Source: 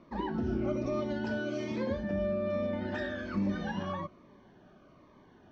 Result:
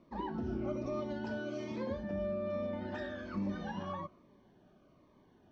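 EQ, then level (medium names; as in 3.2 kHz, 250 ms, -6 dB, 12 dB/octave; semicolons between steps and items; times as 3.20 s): dynamic bell 1.1 kHz, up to +6 dB, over -51 dBFS, Q 1.1; peaking EQ 1.5 kHz -5 dB 1.3 oct; -5.5 dB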